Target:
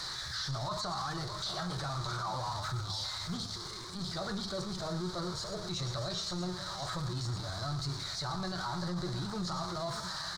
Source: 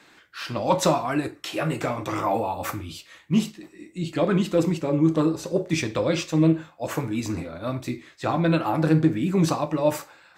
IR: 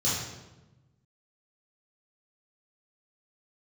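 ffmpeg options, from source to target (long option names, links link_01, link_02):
-filter_complex "[0:a]aeval=exprs='val(0)+0.5*0.0631*sgn(val(0))':channel_layout=same,highshelf=frequency=3000:gain=8,aecho=1:1:110|111|616|647:0.178|0.158|0.141|0.178,acrossover=split=3000[link_01][link_02];[link_02]acompressor=threshold=-37dB:ratio=4:attack=1:release=60[link_03];[link_01][link_03]amix=inputs=2:normalize=0,firequalizer=gain_entry='entry(110,0);entry(210,-21);entry(570,-13);entry(1100,-5);entry(2400,-26);entry(3500,5);entry(12000,-22)':delay=0.05:min_phase=1,asetrate=49501,aresample=44100,atempo=0.890899,alimiter=limit=-24dB:level=0:latency=1:release=12,bandreject=frequency=50:width_type=h:width=6,bandreject=frequency=100:width_type=h:width=6,volume=-4dB"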